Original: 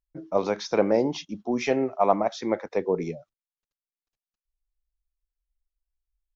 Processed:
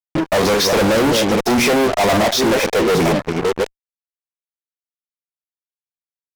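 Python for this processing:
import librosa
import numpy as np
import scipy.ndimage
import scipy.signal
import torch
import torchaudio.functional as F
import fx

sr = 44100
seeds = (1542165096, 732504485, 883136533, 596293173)

y = fx.reverse_delay(x, sr, ms=533, wet_db=-11.5)
y = fx.fuzz(y, sr, gain_db=44.0, gate_db=-44.0)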